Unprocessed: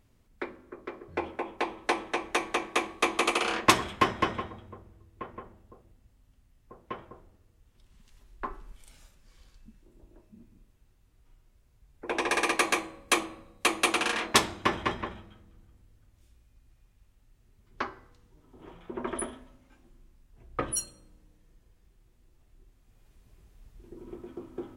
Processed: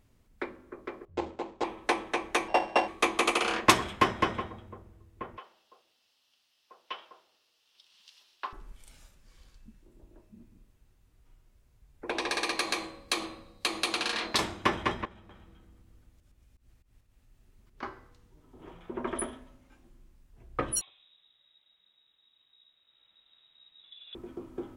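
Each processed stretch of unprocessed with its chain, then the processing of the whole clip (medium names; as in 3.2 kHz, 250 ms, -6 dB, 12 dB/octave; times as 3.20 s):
1.05–1.64 s: median filter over 25 samples + steep low-pass 8.4 kHz 72 dB/octave + three bands expanded up and down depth 70%
2.48–2.88 s: sorted samples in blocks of 16 samples + low-pass 3.6 kHz + high-order bell 720 Hz +11.5 dB 1 oct
5.37–8.53 s: high-pass 750 Hz + high-order bell 3.9 kHz +13 dB 1.3 oct
12.10–14.39 s: peaking EQ 4.3 kHz +12 dB 0.52 oct + compression 2:1, threshold -30 dBFS
15.05–17.83 s: slow attack 128 ms + compression 2.5:1, threshold -53 dBFS + delay 243 ms -4 dB
20.81–24.15 s: bass shelf 350 Hz -10 dB + frequency inversion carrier 3.8 kHz
whole clip: none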